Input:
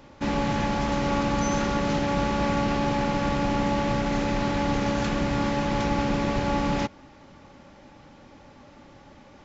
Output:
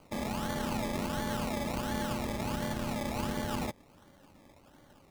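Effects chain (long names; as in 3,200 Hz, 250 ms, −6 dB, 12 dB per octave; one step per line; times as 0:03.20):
time stretch by overlap-add 0.54×, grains 22 ms
sample-and-hold swept by an LFO 24×, swing 60% 1.4 Hz
level −8 dB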